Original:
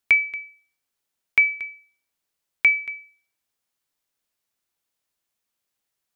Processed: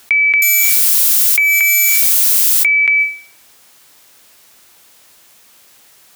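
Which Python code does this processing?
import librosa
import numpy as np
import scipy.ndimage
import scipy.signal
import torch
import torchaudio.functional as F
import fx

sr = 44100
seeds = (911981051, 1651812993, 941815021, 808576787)

y = fx.crossing_spikes(x, sr, level_db=-23.0, at=(0.42, 2.66))
y = fx.rider(y, sr, range_db=10, speed_s=0.5)
y = fx.dynamic_eq(y, sr, hz=1700.0, q=0.97, threshold_db=-34.0, ratio=4.0, max_db=6)
y = scipy.signal.sosfilt(scipy.signal.butter(2, 45.0, 'highpass', fs=sr, output='sos'), y)
y = fx.low_shelf(y, sr, hz=230.0, db=-4.5)
y = fx.env_flatten(y, sr, amount_pct=100)
y = y * 10.0 ** (-2.5 / 20.0)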